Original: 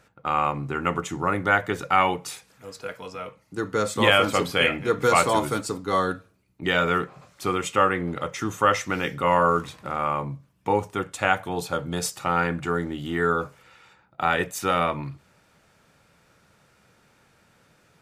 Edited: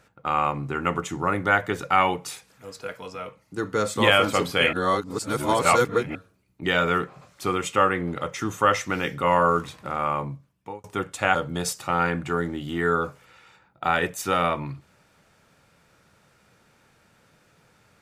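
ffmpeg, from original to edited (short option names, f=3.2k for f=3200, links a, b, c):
-filter_complex "[0:a]asplit=5[a][b][c][d][e];[a]atrim=end=4.732[f];[b]atrim=start=4.728:end=6.152,asetpts=PTS-STARTPTS,areverse[g];[c]atrim=start=6.148:end=10.84,asetpts=PTS-STARTPTS,afade=t=out:st=4.092:d=0.6[h];[d]atrim=start=10.84:end=11.352,asetpts=PTS-STARTPTS,afade=t=in:d=0.004:c=hsin[i];[e]atrim=start=11.718[j];[f][g]acrossfade=d=0.004:c1=hsin:c2=hsin[k];[h][i]concat=n=2:v=0:a=1[l];[k][l]acrossfade=d=0.004:c1=hsin:c2=hsin[m];[m][j]acrossfade=d=0.004:c1=hsin:c2=hsin"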